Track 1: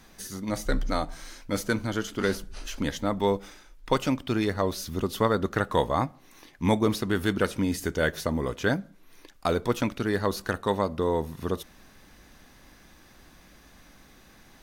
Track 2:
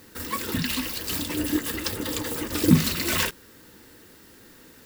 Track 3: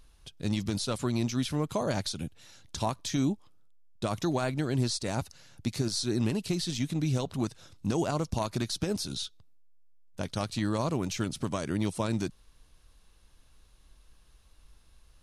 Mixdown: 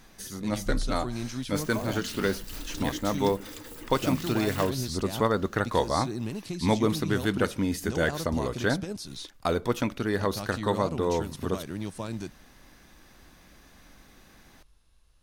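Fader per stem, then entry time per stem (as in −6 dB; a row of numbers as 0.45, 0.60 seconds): −1.0, −14.0, −5.0 decibels; 0.00, 1.40, 0.00 seconds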